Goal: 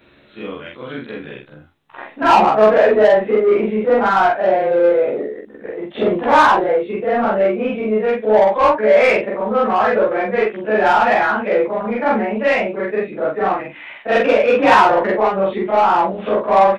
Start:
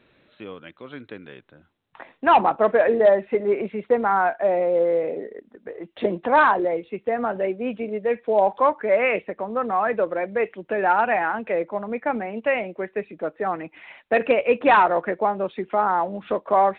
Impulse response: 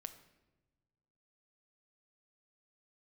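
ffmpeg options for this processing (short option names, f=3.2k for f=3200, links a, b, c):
-filter_complex "[0:a]afftfilt=real='re':imag='-im':win_size=4096:overlap=0.75,asplit=2[a][b];[b]asoftclip=type=tanh:threshold=-26.5dB,volume=-4.5dB[c];[a][c]amix=inputs=2:normalize=0,aeval=exprs='0.398*(cos(1*acos(clip(val(0)/0.398,-1,1)))-cos(1*PI/2))+0.0251*(cos(5*acos(clip(val(0)/0.398,-1,1)))-cos(5*PI/2))':c=same,asplit=2[d][e];[e]adelay=14,volume=-3dB[f];[d][f]amix=inputs=2:normalize=0,volume=5.5dB"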